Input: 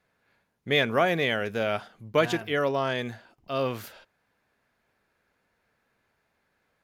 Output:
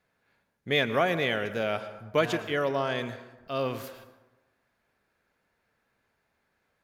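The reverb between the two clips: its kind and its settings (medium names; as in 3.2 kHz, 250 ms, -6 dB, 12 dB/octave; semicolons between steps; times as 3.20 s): plate-style reverb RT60 1.1 s, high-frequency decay 0.5×, pre-delay 95 ms, DRR 12.5 dB; trim -2 dB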